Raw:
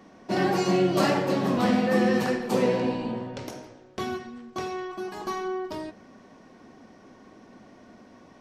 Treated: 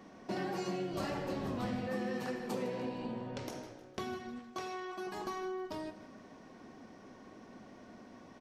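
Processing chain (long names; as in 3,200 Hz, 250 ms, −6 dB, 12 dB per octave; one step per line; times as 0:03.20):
0:00.92–0:01.87: sub-octave generator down 1 octave, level −6 dB
0:04.39–0:05.07: low-shelf EQ 330 Hz −9.5 dB
downward compressor 3 to 1, threshold −35 dBFS, peak gain reduction 13 dB
repeating echo 155 ms, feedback 44%, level −15.5 dB
level −3 dB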